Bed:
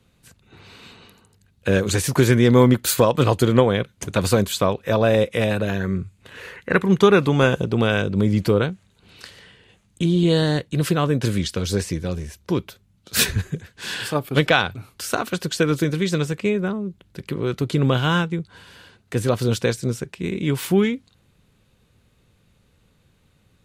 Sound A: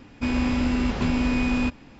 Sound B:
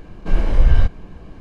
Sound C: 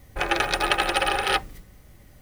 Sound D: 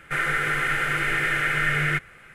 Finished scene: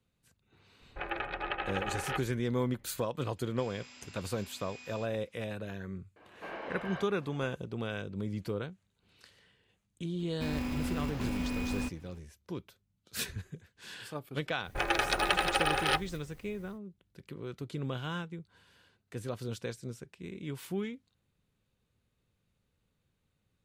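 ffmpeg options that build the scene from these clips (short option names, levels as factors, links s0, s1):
-filter_complex "[3:a]asplit=2[s0][s1];[1:a]asplit=2[s2][s3];[0:a]volume=0.133[s4];[s0]lowpass=f=2900:w=0.5412,lowpass=f=2900:w=1.3066[s5];[s2]aderivative[s6];[2:a]highpass=580,lowpass=2700[s7];[s3]acrusher=bits=5:mode=log:mix=0:aa=0.000001[s8];[s5]atrim=end=2.21,asetpts=PTS-STARTPTS,volume=0.237,afade=t=in:d=0.004:c=hsin,afade=t=out:st=2.206:d=0.004:c=hsin,adelay=800[s9];[s6]atrim=end=1.99,asetpts=PTS-STARTPTS,volume=0.316,afade=t=in:d=0.004:c=hsin,afade=t=out:st=1.986:d=0.004:c=hsin,adelay=3360[s10];[s7]atrim=end=1.4,asetpts=PTS-STARTPTS,volume=0.447,afade=t=in:d=0.004:c=hsin,afade=t=out:st=1.396:d=0.004:c=hsin,adelay=6160[s11];[s8]atrim=end=1.99,asetpts=PTS-STARTPTS,volume=0.266,afade=t=in:d=0.004:c=hsin,afade=t=out:st=1.986:d=0.004:c=hsin,adelay=10190[s12];[s1]atrim=end=2.21,asetpts=PTS-STARTPTS,volume=0.501,afade=t=in:d=0.1,afade=t=out:st=2.11:d=0.1,adelay=14590[s13];[s4][s9][s10][s11][s12][s13]amix=inputs=6:normalize=0"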